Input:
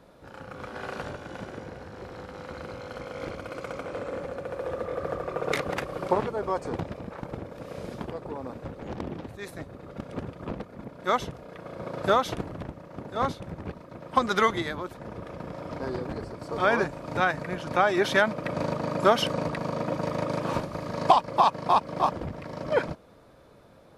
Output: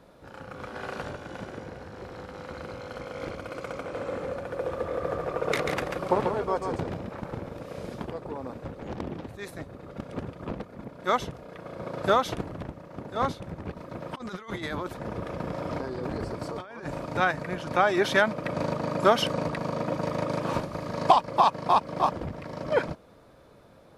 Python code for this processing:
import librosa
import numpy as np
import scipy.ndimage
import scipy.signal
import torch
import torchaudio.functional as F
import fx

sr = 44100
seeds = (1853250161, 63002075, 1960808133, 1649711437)

y = fx.echo_single(x, sr, ms=140, db=-5.0, at=(3.82, 7.59))
y = fx.over_compress(y, sr, threshold_db=-35.0, ratio=-1.0, at=(13.76, 17.04), fade=0.02)